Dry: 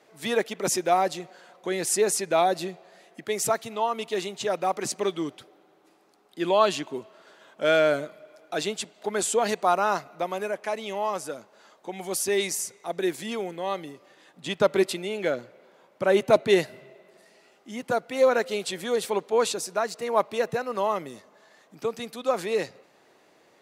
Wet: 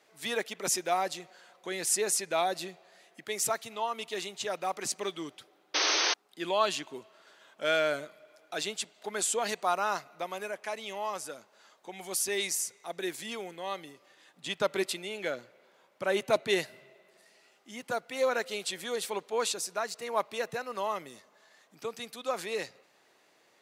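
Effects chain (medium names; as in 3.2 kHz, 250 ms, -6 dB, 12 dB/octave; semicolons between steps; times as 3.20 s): tilt shelf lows -4.5 dB; painted sound noise, 5.74–6.14 s, 290–6400 Hz -21 dBFS; trim -6 dB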